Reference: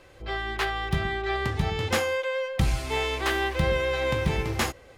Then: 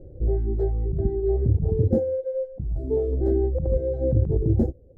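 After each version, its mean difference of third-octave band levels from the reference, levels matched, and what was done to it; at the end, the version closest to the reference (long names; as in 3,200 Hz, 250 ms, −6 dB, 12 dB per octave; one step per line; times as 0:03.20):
18.0 dB: reverb reduction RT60 1 s
inverse Chebyshev low-pass filter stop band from 1,000 Hz, stop band 40 dB
low-shelf EQ 170 Hz +8.5 dB
compressor whose output falls as the input rises −26 dBFS, ratio −1
level +6 dB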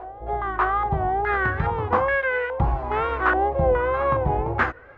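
10.5 dB: parametric band 190 Hz −6.5 dB 0.32 octaves
tape wow and flutter 100 cents
on a send: backwards echo 598 ms −16.5 dB
on the sum: low-pass on a step sequencer 2.4 Hz 720–1,700 Hz
level +1.5 dB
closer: second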